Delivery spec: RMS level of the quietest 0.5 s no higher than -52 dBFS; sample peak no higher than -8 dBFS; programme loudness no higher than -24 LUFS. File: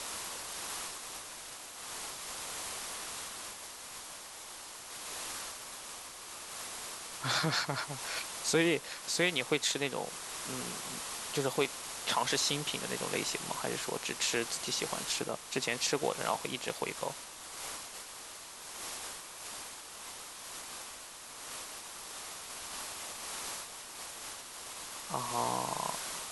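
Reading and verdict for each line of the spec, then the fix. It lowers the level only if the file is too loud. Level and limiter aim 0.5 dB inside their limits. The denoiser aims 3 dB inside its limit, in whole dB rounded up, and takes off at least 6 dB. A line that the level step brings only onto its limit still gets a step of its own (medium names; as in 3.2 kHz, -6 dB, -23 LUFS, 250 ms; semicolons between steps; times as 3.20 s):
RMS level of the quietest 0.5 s -48 dBFS: fail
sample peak -15.0 dBFS: pass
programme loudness -36.0 LUFS: pass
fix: noise reduction 7 dB, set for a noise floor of -48 dBFS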